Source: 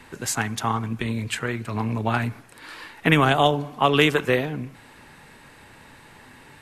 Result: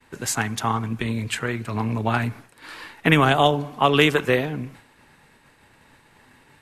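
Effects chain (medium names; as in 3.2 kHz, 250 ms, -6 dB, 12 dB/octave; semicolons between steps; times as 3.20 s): expander -41 dBFS; trim +1 dB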